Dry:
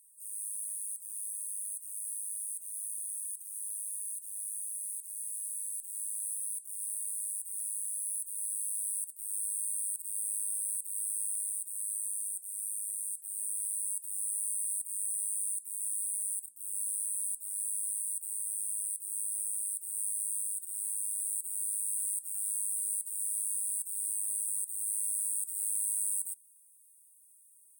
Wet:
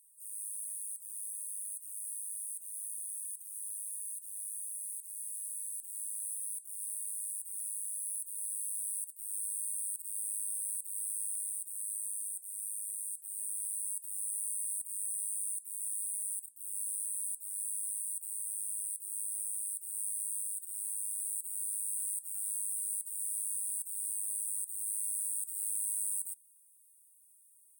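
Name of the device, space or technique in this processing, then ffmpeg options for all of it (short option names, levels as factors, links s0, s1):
presence and air boost: -af "equalizer=f=3400:t=o:w=0.84:g=3.5,highshelf=f=9900:g=4.5,volume=0.562"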